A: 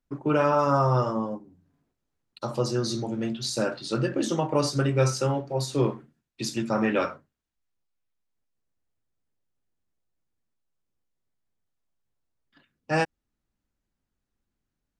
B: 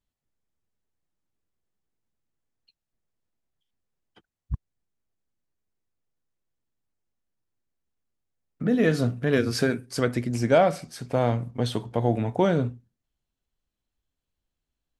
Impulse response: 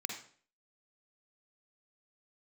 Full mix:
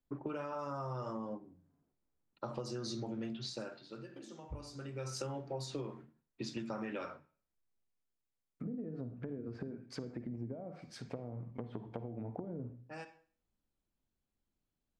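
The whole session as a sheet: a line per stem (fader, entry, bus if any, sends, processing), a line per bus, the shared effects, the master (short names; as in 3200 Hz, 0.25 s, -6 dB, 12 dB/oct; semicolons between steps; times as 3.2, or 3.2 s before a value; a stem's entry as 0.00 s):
-5.0 dB, 0.00 s, send -18.5 dB, low-pass opened by the level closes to 1100 Hz, open at -21 dBFS; compressor 4:1, threshold -27 dBFS, peak gain reduction 9 dB; auto duck -22 dB, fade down 0.80 s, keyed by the second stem
-11.0 dB, 0.00 s, send -6 dB, compressor 16:1, threshold -25 dBFS, peak gain reduction 12.5 dB; treble ducked by the level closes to 390 Hz, closed at -25 dBFS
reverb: on, RT60 0.50 s, pre-delay 43 ms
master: notches 50/100/150 Hz; compressor, threshold -37 dBFS, peak gain reduction 8 dB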